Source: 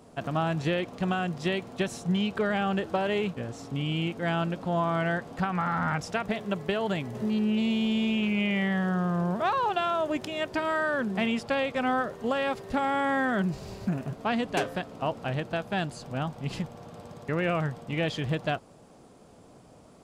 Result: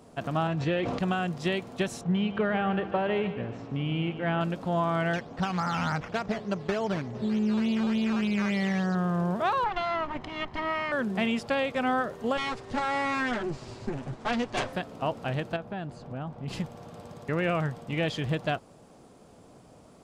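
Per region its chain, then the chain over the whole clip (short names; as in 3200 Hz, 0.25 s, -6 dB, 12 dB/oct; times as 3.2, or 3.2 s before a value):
0.47–0.99 air absorption 95 m + notch comb 210 Hz + sustainer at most 25 dB/s
2.01–4.41 LPF 2700 Hz + feedback echo 0.146 s, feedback 43%, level -12 dB
5.13–8.95 decimation with a swept rate 9×, swing 60% 3.4 Hz + air absorption 150 m
9.64–10.92 minimum comb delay 0.97 ms + LPF 3000 Hz
12.37–14.73 minimum comb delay 8.2 ms + LPF 8800 Hz 24 dB/oct
15.56–16.48 LPF 1300 Hz 6 dB/oct + compressor 2.5:1, threshold -32 dBFS
whole clip: dry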